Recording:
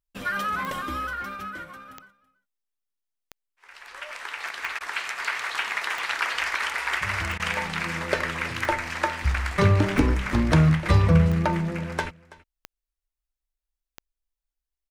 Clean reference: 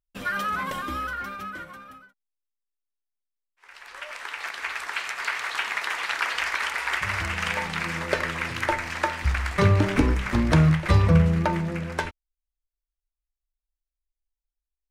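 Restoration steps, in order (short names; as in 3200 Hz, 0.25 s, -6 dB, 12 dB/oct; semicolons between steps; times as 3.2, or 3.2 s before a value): de-click; interpolate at 4.79/7.38, 15 ms; inverse comb 0.329 s -21 dB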